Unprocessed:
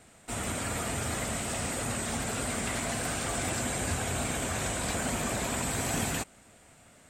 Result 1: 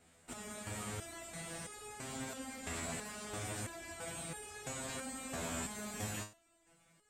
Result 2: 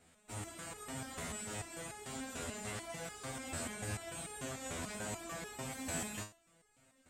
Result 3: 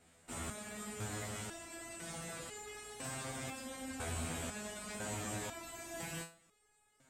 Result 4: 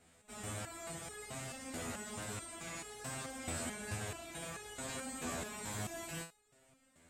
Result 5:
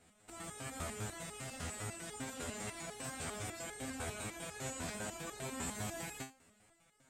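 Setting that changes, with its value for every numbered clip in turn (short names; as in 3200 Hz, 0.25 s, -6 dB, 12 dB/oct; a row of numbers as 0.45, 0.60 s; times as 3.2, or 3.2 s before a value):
stepped resonator, rate: 3, 6.8, 2, 4.6, 10 Hz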